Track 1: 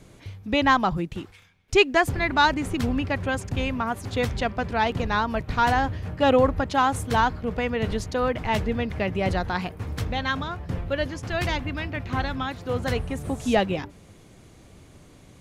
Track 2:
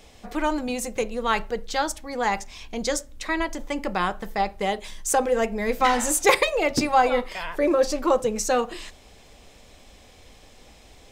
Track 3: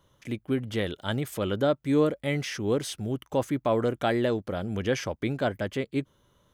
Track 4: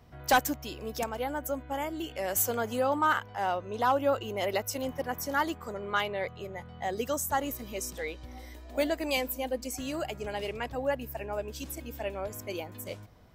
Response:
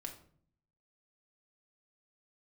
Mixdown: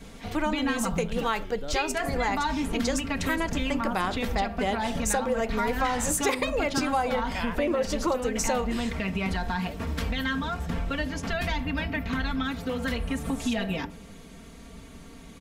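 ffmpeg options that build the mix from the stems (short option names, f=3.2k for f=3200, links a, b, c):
-filter_complex "[0:a]aecho=1:1:4.4:0.98,volume=1.5dB,asplit=2[a][b];[b]volume=-11dB[c];[1:a]agate=range=-33dB:threshold=-46dB:ratio=3:detection=peak,volume=0.5dB[d];[2:a]volume=-15dB[e];[3:a]adelay=900,volume=-17dB[f];[a][e]amix=inputs=2:normalize=0,acrossover=split=600|7300[g][h][i];[g]acompressor=threshold=-28dB:ratio=4[j];[h]acompressor=threshold=-31dB:ratio=4[k];[i]acompressor=threshold=-45dB:ratio=4[l];[j][k][l]amix=inputs=3:normalize=0,alimiter=limit=-19dB:level=0:latency=1,volume=0dB[m];[4:a]atrim=start_sample=2205[n];[c][n]afir=irnorm=-1:irlink=0[o];[d][f][m][o]amix=inputs=4:normalize=0,acompressor=threshold=-23dB:ratio=5"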